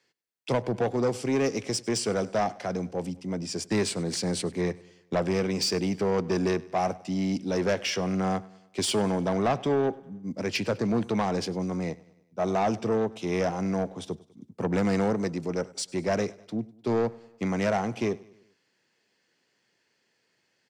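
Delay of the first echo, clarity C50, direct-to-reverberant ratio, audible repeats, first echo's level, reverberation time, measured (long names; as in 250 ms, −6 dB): 100 ms, no reverb audible, no reverb audible, 3, −22.0 dB, no reverb audible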